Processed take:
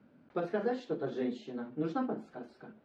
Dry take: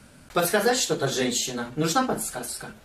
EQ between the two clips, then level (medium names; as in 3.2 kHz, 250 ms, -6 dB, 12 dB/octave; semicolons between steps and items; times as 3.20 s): band-pass filter 260 Hz, Q 1.3; distance through air 240 m; tilt EQ +3 dB/octave; 0.0 dB